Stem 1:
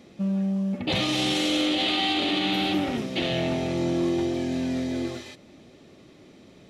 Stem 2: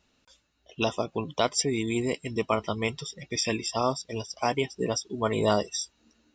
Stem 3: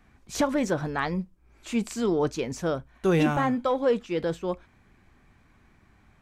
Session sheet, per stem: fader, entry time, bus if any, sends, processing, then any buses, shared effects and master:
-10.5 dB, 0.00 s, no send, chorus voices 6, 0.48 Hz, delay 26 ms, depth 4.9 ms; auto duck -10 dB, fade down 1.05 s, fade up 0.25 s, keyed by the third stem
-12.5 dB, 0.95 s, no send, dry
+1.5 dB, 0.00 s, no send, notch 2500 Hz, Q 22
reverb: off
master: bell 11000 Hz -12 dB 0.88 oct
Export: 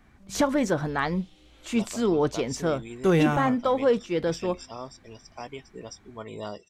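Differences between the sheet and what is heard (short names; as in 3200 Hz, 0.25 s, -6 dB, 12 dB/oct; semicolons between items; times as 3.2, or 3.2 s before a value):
stem 1 -10.5 dB -> -21.0 dB; master: missing bell 11000 Hz -12 dB 0.88 oct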